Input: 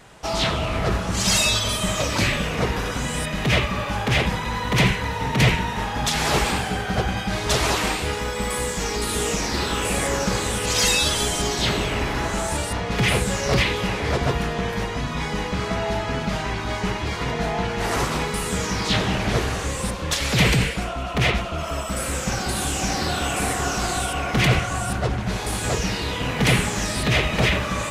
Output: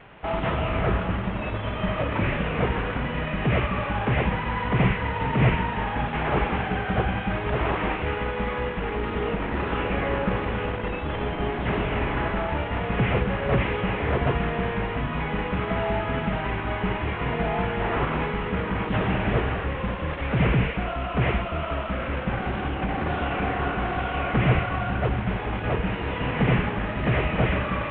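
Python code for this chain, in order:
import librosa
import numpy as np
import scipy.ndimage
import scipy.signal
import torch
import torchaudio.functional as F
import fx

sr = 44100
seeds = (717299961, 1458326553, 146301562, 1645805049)

y = fx.cvsd(x, sr, bps=16000)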